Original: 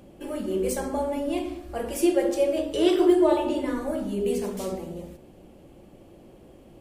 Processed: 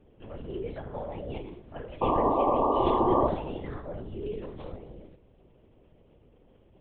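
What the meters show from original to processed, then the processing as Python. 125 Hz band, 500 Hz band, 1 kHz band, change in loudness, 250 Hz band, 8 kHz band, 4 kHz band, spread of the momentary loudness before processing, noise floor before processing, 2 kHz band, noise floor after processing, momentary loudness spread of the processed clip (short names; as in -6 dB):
+3.5 dB, -5.5 dB, +6.0 dB, -3.5 dB, -8.5 dB, under -40 dB, -11.0 dB, 14 LU, -51 dBFS, -9.5 dB, -60 dBFS, 19 LU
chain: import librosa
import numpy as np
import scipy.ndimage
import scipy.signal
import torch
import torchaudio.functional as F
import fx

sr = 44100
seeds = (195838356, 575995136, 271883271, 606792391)

y = fx.lpc_vocoder(x, sr, seeds[0], excitation='whisper', order=10)
y = fx.spec_paint(y, sr, seeds[1], shape='noise', start_s=2.01, length_s=1.27, low_hz=220.0, high_hz=1200.0, level_db=-16.0)
y = y * librosa.db_to_amplitude(-9.0)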